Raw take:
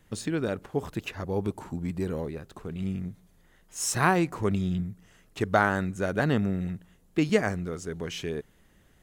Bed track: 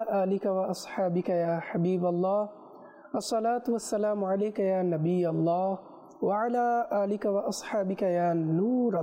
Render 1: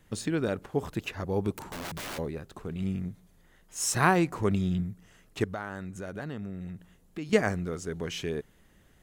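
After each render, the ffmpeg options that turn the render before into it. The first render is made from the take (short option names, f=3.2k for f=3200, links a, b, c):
-filter_complex "[0:a]asplit=3[a][b][c];[a]afade=t=out:st=1.53:d=0.02[d];[b]aeval=exprs='(mod(44.7*val(0)+1,2)-1)/44.7':c=same,afade=t=in:st=1.53:d=0.02,afade=t=out:st=2.17:d=0.02[e];[c]afade=t=in:st=2.17:d=0.02[f];[d][e][f]amix=inputs=3:normalize=0,asettb=1/sr,asplit=3[g][h][i];[g]atrim=end=5.444[j];[h]atrim=start=5.44:end=7.33,asetpts=PTS-STARTPTS,afade=t=in:d=0.004:c=qsin,afade=t=out:st=1.886:d=0.004:c=qsin,acompressor=threshold=-39dB:ratio=2.5:attack=3.2:release=140:knee=1:detection=peak[k];[i]atrim=start=7.326[l];[j][k]acrossfade=d=0.004:c1=hsin:c2=qsin[m];[m][l]acrossfade=d=0.004:c1=qsin:c2=hsin"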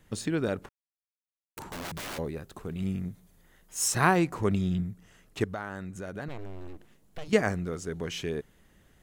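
-filter_complex "[0:a]asettb=1/sr,asplit=3[a][b][c];[a]atrim=end=2.264[d];[b]atrim=start=2.26:end=3.88,asetpts=PTS-STARTPTS,afade=t=in:d=0.004:c=qsin,afade=t=out:st=1.616:d=0.004:c=qsin,highshelf=f=10k:g=8[e];[c]atrim=start=3.876[f];[d][e]acrossfade=d=0.004:c1=hsin:c2=qsin[g];[g][f]acrossfade=d=0.004:c1=qsin:c2=hsin,asettb=1/sr,asplit=3[h][i][j];[h]atrim=end=6.284[k];[i]atrim=start=6.28:end=7.28,asetpts=PTS-STARTPTS,afade=t=in:d=0.004:c=qsin,afade=t=out:st=0.996:d=0.004:c=qsin,aeval=exprs='abs(val(0))':c=same[l];[j]atrim=start=7.276[m];[k][l]acrossfade=d=0.004:c1=hsin:c2=qsin[n];[n][m]acrossfade=d=0.004:c1=qsin:c2=hsin,asplit=3[o][p][q];[o]atrim=end=0.69,asetpts=PTS-STARTPTS,afade=t=out:st=0.686:d=0.004:c=hsin[r];[p]atrim=start=0.69:end=1.57,asetpts=PTS-STARTPTS,volume=0[s];[q]atrim=start=1.57,asetpts=PTS-STARTPTS,afade=t=in:d=0.004:c=hsin[t];[r][s][t]concat=n=3:v=0:a=1"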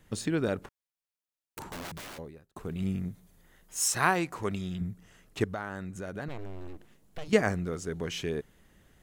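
-filter_complex "[0:a]asettb=1/sr,asplit=3[a][b][c];[a]atrim=end=3.804[d];[b]atrim=start=3.8:end=4.81,asetpts=PTS-STARTPTS,afade=t=in:d=0.004:c=qsin,afade=t=out:st=1.006:d=0.004:c=qsin,lowshelf=f=490:g=-8.5[e];[c]atrim=start=4.806[f];[d][e]acrossfade=d=0.004:c1=hsin:c2=qsin[g];[g][f]acrossfade=d=0.004:c1=qsin:c2=hsin,asplit=2[h][i];[h]atrim=end=2.56,asetpts=PTS-STARTPTS,afade=t=out:st=1.62:d=0.94[j];[i]atrim=start=2.56,asetpts=PTS-STARTPTS,afade=t=in:d=0.004:c=hsin[k];[j][k]concat=n=2:v=0:a=1"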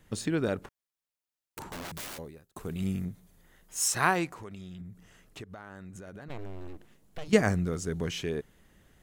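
-filter_complex "[0:a]asettb=1/sr,asplit=3[a][b][c];[a]atrim=end=1.924[d];[b]atrim=start=1.92:end=3.05,asetpts=PTS-STARTPTS,afade=t=in:d=0.004:c=qsin,afade=t=out:st=1.126:d=0.004:c=qsin,highshelf=f=5.3k:g=9[e];[c]atrim=start=3.046[f];[d][e]acrossfade=d=0.004:c1=hsin:c2=qsin[g];[g][f]acrossfade=d=0.004:c1=qsin:c2=hsin,asettb=1/sr,asplit=3[h][i][j];[h]atrim=end=4.304[k];[i]atrim=start=4.3:end=6.3,asetpts=PTS-STARTPTS,afade=t=in:d=0.004:c=qsin,afade=t=out:st=1.996:d=0.004:c=qsin,acompressor=threshold=-42dB:ratio=4:attack=3.2:release=140:knee=1:detection=peak[l];[j]atrim=start=6.296[m];[k][l]acrossfade=d=0.004:c1=hsin:c2=qsin[n];[n][m]acrossfade=d=0.004:c1=qsin:c2=hsin,asettb=1/sr,asplit=3[o][p][q];[o]atrim=end=7.334[r];[p]atrim=start=7.33:end=8.11,asetpts=PTS-STARTPTS,afade=t=in:d=0.004:c=qsin,afade=t=out:st=0.776:d=0.004:c=qsin,bass=f=250:g=5,treble=f=4k:g=4[s];[q]atrim=start=8.106[t];[r][s]acrossfade=d=0.004:c1=hsin:c2=qsin[u];[u][t]acrossfade=d=0.004:c1=qsin:c2=hsin"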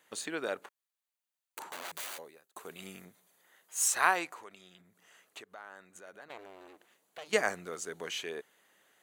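-af "highpass=590,bandreject=f=5.3k:w=8.4"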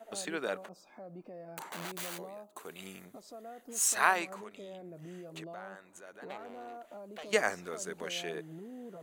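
-filter_complex "[1:a]volume=-20dB[a];[0:a][a]amix=inputs=2:normalize=0"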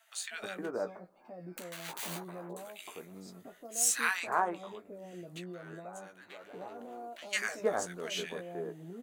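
-filter_complex "[0:a]asplit=2[a][b];[b]adelay=17,volume=-7.5dB[c];[a][c]amix=inputs=2:normalize=0,acrossover=split=1300[d][e];[d]adelay=310[f];[f][e]amix=inputs=2:normalize=0"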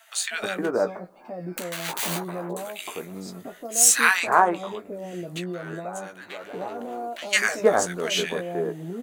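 -af "volume=12dB"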